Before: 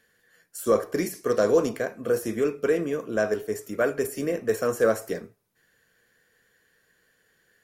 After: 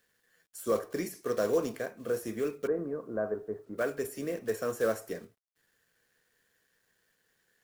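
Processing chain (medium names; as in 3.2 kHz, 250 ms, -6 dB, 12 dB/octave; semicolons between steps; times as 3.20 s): block-companded coder 5-bit; 2.67–3.78 s: inverse Chebyshev low-pass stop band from 4.5 kHz, stop band 60 dB; bit crusher 11-bit; trim -7.5 dB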